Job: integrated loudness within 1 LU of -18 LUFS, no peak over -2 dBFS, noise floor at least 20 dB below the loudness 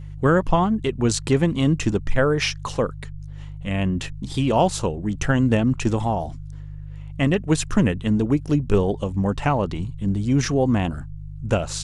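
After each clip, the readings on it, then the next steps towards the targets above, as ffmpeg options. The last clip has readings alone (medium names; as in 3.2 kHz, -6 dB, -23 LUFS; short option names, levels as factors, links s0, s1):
hum 50 Hz; highest harmonic 150 Hz; hum level -33 dBFS; loudness -22.0 LUFS; peak level -4.0 dBFS; loudness target -18.0 LUFS
-> -af "bandreject=f=50:t=h:w=4,bandreject=f=100:t=h:w=4,bandreject=f=150:t=h:w=4"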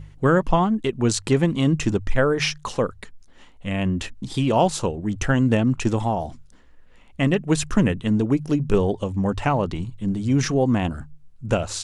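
hum not found; loudness -22.5 LUFS; peak level -5.5 dBFS; loudness target -18.0 LUFS
-> -af "volume=1.68,alimiter=limit=0.794:level=0:latency=1"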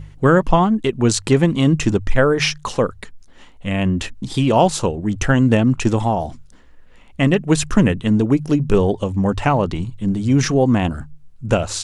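loudness -18.0 LUFS; peak level -2.0 dBFS; noise floor -45 dBFS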